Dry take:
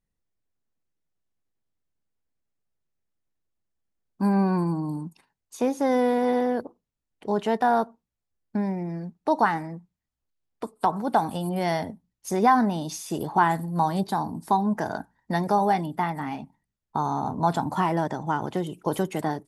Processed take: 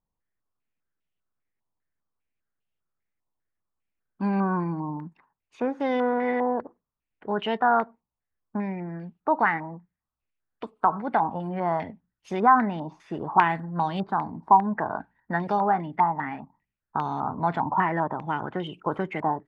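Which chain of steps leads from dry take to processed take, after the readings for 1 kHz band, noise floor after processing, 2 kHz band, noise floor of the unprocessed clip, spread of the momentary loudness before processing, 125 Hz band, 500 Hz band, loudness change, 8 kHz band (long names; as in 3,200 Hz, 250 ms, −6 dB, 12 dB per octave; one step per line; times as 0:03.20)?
+1.0 dB, below −85 dBFS, +2.5 dB, −84 dBFS, 11 LU, −3.5 dB, −2.5 dB, −0.5 dB, below −20 dB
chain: low-pass on a step sequencer 5 Hz 980–2,900 Hz
level −3.5 dB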